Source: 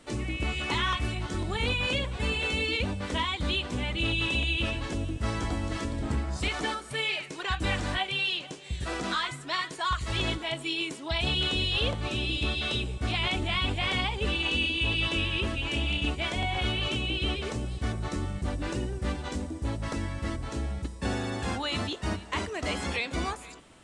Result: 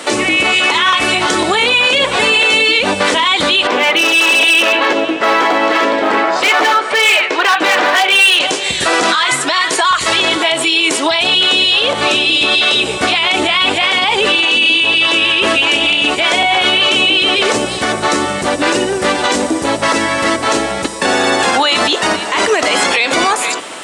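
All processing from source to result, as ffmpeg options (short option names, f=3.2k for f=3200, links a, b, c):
-filter_complex "[0:a]asettb=1/sr,asplit=3[a][b][c];[a]atrim=end=3.674[d];[b]atrim=start=3.67:end=8.4,asetpts=PTS-STARTPTS,afade=t=in:d=0.004:c=qsin,afade=t=out:st=4.726:d=0.004:c=qsin,highpass=340,lowpass=2.8k,volume=31.5dB,asoftclip=hard,volume=-31.5dB[e];[c]atrim=start=8.396[f];[d][e]acrossfade=d=0.004:c1=hsin:c2=qsin[g];[g][f]acrossfade=d=0.004:c1=qsin:c2=hsin,acompressor=threshold=-31dB:ratio=6,highpass=440,alimiter=level_in=32.5dB:limit=-1dB:release=50:level=0:latency=1,volume=-2.5dB"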